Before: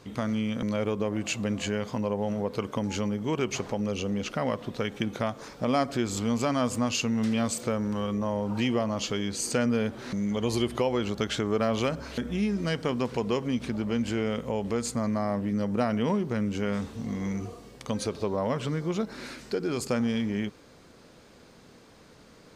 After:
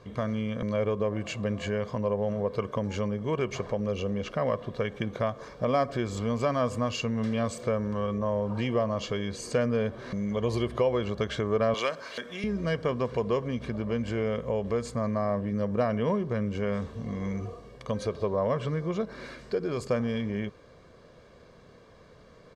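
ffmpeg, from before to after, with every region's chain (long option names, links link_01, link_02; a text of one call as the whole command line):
ffmpeg -i in.wav -filter_complex "[0:a]asettb=1/sr,asplit=3[link_01][link_02][link_03];[link_01]atrim=end=11.744[link_04];[link_02]atrim=start=11.74:end=12.44,asetpts=PTS-STARTPTS,afade=type=in:duration=0.004:curve=qsin,afade=type=out:start_time=0.696:duration=0.004:curve=qsin,highpass=240,tiltshelf=frequency=850:gain=-7.5[link_05];[link_03]atrim=start=12.436[link_06];[link_04][link_05]acrossfade=duration=0.004:curve1=hsin:curve2=qsin[link_07];[link_07][link_06]acrossfade=duration=0.004:curve1=qsin:curve2=hsin,aemphasis=mode=reproduction:type=75kf,bandreject=frequency=2600:width=14,aecho=1:1:1.8:0.48" out.wav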